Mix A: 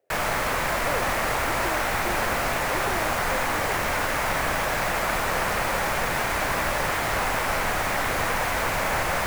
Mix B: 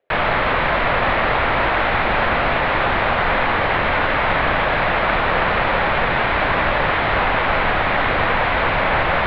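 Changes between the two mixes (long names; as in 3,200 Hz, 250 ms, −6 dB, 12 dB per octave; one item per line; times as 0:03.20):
background +7.5 dB
master: add Butterworth low-pass 3,800 Hz 48 dB per octave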